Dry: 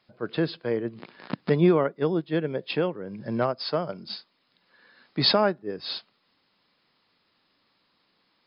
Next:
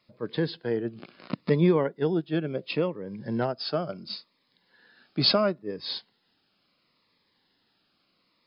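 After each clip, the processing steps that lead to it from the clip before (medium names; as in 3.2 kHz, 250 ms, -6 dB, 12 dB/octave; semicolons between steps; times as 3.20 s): Shepard-style phaser falling 0.72 Hz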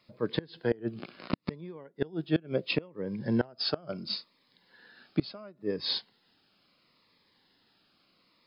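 inverted gate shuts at -17 dBFS, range -25 dB; trim +2.5 dB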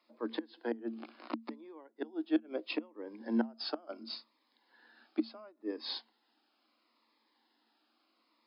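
rippled Chebyshev high-pass 220 Hz, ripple 9 dB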